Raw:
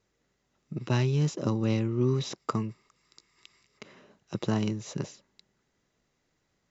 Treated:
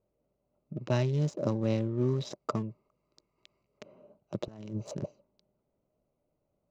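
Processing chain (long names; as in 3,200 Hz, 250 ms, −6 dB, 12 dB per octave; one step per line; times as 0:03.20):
adaptive Wiener filter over 25 samples
parametric band 600 Hz +12 dB 0.3 octaves
0:04.48–0:05.06: compressor whose output falls as the input rises −34 dBFS, ratio −0.5
level −3 dB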